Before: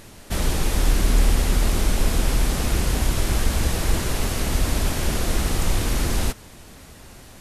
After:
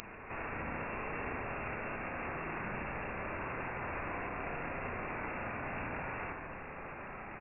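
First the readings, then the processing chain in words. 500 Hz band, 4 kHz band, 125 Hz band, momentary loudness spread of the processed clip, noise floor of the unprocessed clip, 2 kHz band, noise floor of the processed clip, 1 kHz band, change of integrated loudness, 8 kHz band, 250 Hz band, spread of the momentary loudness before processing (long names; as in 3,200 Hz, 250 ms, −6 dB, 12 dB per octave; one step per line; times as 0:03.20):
−11.0 dB, below −30 dB, −22.0 dB, 6 LU, −45 dBFS, −7.0 dB, −47 dBFS, −7.0 dB, −16.5 dB, below −40 dB, −16.0 dB, 4 LU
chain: first difference
automatic gain control gain up to 4 dB
brickwall limiter −25 dBFS, peak gain reduction 9.5 dB
downward compressor, threshold −34 dBFS, peak gain reduction 4 dB
log-companded quantiser 4 bits
soft clipping −37 dBFS, distortion −11 dB
double-tracking delay 31 ms −7 dB
on a send: feedback echo with a high-pass in the loop 70 ms, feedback 78%, high-pass 1,000 Hz, level −4 dB
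on the sum: voice inversion scrambler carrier 2,700 Hz
level +13 dB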